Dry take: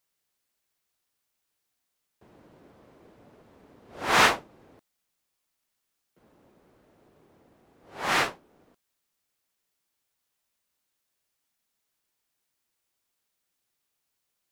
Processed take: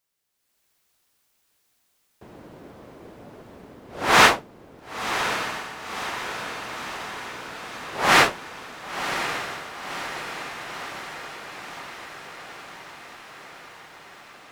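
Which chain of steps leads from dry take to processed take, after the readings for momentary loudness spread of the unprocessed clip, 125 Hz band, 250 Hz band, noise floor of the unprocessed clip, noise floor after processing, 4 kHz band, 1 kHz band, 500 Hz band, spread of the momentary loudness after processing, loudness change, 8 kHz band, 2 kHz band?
15 LU, +8.0 dB, +7.5 dB, −81 dBFS, −70 dBFS, +7.5 dB, +7.5 dB, +7.5 dB, 24 LU, 0.0 dB, +7.5 dB, +7.5 dB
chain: automatic gain control gain up to 11 dB
on a send: feedback delay with all-pass diffusion 1,054 ms, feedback 67%, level −8.5 dB

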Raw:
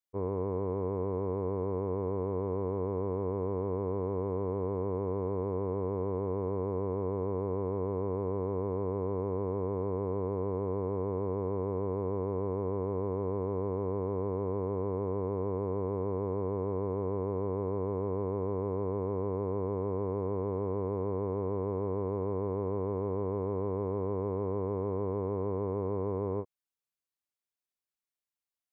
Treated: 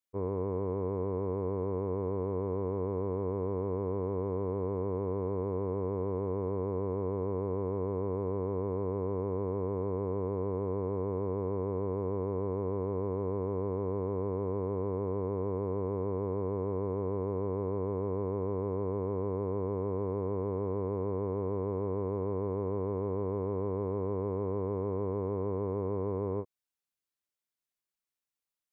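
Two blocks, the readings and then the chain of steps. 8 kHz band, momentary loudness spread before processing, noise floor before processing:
can't be measured, 0 LU, below −85 dBFS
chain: parametric band 780 Hz −2 dB

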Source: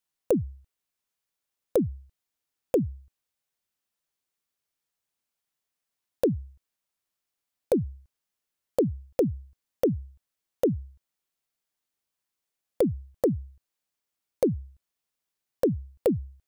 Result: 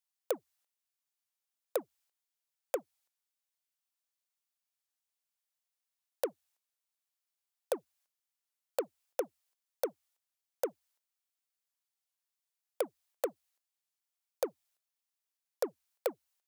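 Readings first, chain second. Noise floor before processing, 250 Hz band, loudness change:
below −85 dBFS, −21.5 dB, −11.0 dB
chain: noise gate −49 dBFS, range −8 dB
high-shelf EQ 2,200 Hz +8 dB
in parallel at −4.5 dB: soft clipping −24.5 dBFS, distortion −9 dB
on the sum: four-pole ladder high-pass 500 Hz, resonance 25%
wow of a warped record 33 1/3 rpm, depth 100 cents
level −1.5 dB

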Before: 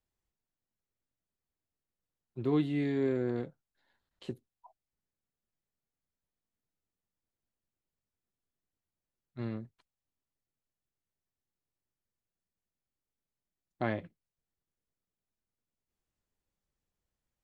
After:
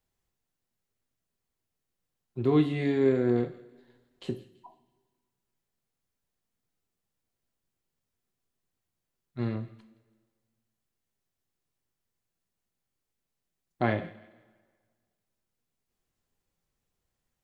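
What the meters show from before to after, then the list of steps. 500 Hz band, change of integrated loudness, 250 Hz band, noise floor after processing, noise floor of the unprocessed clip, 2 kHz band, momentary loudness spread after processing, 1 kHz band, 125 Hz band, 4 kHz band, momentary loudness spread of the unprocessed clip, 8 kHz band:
+7.0 dB, +5.5 dB, +5.0 dB, −85 dBFS, below −85 dBFS, +6.0 dB, 19 LU, +7.0 dB, +6.0 dB, +6.0 dB, 18 LU, can't be measured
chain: delay with a high-pass on its return 166 ms, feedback 35%, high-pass 1,900 Hz, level −17 dB
coupled-rooms reverb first 0.5 s, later 1.7 s, from −17 dB, DRR 7 dB
level +5 dB

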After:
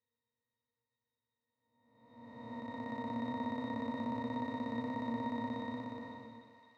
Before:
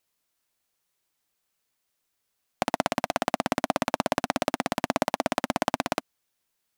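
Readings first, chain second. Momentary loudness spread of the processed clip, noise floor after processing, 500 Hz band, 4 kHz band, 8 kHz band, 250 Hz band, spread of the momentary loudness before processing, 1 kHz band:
13 LU, below −85 dBFS, −15.0 dB, −18.0 dB, below −30 dB, −5.5 dB, 3 LU, −13.0 dB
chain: spectrum smeared in time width 824 ms
resonances in every octave A#, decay 0.13 s
feedback echo with a high-pass in the loop 516 ms, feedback 78%, high-pass 990 Hz, level −15 dB
level +9 dB

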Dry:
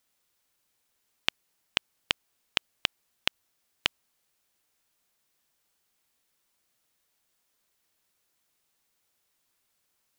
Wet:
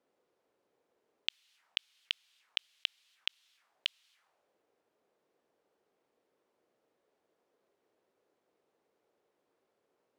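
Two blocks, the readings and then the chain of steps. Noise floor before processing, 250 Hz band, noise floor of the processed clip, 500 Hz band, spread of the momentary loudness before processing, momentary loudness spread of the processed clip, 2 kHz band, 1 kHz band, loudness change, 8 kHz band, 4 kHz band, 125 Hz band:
−76 dBFS, below −25 dB, −81 dBFS, below −20 dB, 0 LU, 0 LU, −9.5 dB, −20.5 dB, −6.5 dB, −14.0 dB, −5.0 dB, below −35 dB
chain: envelope filter 390–3,300 Hz, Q 2.1, up, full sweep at −47.5 dBFS
compressor whose output falls as the input rises −33 dBFS, ratio −0.5
level +5 dB

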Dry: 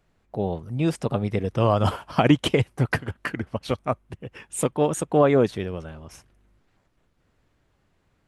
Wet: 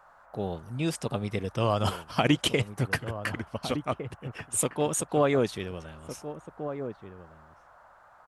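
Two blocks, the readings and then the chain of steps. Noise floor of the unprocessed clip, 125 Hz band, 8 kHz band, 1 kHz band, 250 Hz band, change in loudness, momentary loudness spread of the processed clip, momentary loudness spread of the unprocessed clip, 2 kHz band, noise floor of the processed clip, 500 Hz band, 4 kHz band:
−68 dBFS, −6.0 dB, +3.5 dB, −4.5 dB, −6.0 dB, −5.5 dB, 16 LU, 15 LU, −2.0 dB, −57 dBFS, −5.5 dB, +0.5 dB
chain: high-shelf EQ 2,400 Hz +10.5 dB
noise in a band 570–1,500 Hz −50 dBFS
slap from a distant wall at 250 metres, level −10 dB
level −6.5 dB

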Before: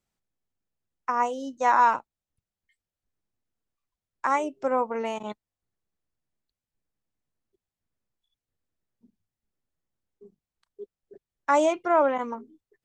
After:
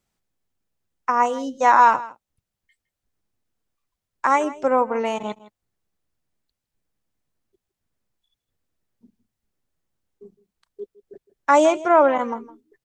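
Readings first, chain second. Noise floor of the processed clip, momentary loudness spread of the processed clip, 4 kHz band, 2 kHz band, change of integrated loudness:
−85 dBFS, 15 LU, +6.0 dB, +6.0 dB, +6.0 dB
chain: single-tap delay 161 ms −18.5 dB
level +6 dB

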